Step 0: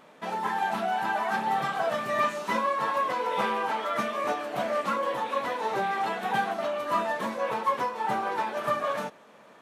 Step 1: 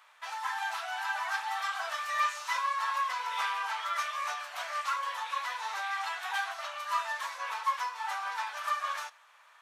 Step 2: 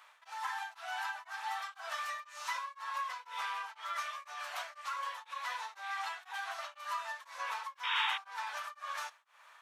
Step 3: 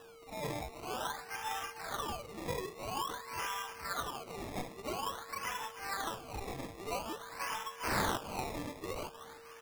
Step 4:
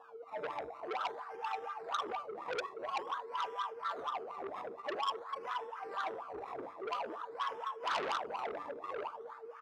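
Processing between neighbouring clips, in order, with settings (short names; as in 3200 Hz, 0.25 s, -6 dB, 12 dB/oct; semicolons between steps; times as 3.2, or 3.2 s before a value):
HPF 1000 Hz 24 dB/oct; dynamic EQ 5700 Hz, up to +6 dB, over -55 dBFS, Q 1.2; gain -1.5 dB
compressor, threshold -35 dBFS, peak gain reduction 10.5 dB; painted sound noise, 7.83–8.18, 870–3800 Hz -33 dBFS; beating tremolo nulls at 2 Hz; gain +1 dB
whine 460 Hz -53 dBFS; feedback echo 0.306 s, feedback 56%, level -14 dB; decimation with a swept rate 20×, swing 100% 0.49 Hz
echo 78 ms -9 dB; wah 4.2 Hz 390–1300 Hz, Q 6.6; core saturation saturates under 3000 Hz; gain +11.5 dB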